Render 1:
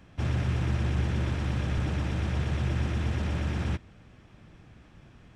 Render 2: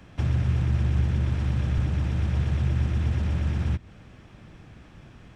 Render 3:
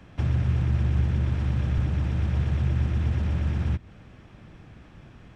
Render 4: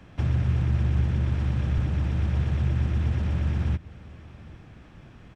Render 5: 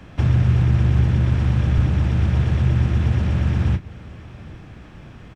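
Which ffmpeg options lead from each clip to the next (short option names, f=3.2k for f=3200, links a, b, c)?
-filter_complex "[0:a]acrossover=split=180[a][b];[b]acompressor=threshold=-42dB:ratio=6[c];[a][c]amix=inputs=2:normalize=0,volume=5dB"
-af "highshelf=f=4.7k:g=-5.5"
-af "aecho=1:1:799:0.0794"
-filter_complex "[0:a]asplit=2[a][b];[b]adelay=33,volume=-11.5dB[c];[a][c]amix=inputs=2:normalize=0,volume=7dB"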